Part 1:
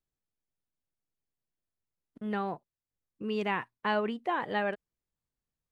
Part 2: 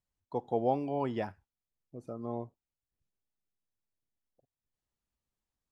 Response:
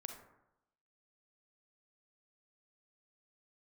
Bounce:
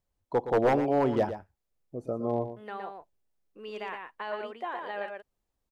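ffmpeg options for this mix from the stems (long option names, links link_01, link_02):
-filter_complex "[0:a]highpass=frequency=1100:poles=1,alimiter=level_in=0.5dB:limit=-24dB:level=0:latency=1:release=28,volume=-0.5dB,adelay=350,volume=-5.5dB,asplit=2[link_01][link_02];[link_02]volume=-4.5dB[link_03];[1:a]lowshelf=frequency=84:gain=9.5,aeval=exprs='0.0596*(abs(mod(val(0)/0.0596+3,4)-2)-1)':channel_layout=same,volume=1.5dB,asplit=2[link_04][link_05];[link_05]volume=-11dB[link_06];[link_03][link_06]amix=inputs=2:normalize=0,aecho=0:1:117:1[link_07];[link_01][link_04][link_07]amix=inputs=3:normalize=0,equalizer=frequency=520:width=0.68:gain=8.5"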